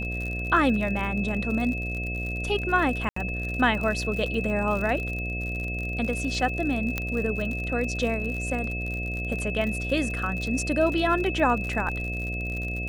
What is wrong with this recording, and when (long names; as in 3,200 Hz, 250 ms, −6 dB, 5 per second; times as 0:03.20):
mains buzz 60 Hz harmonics 12 −32 dBFS
surface crackle 59 per second −31 dBFS
whistle 2,600 Hz −32 dBFS
0:03.09–0:03.16: drop-out 74 ms
0:06.98: click −12 dBFS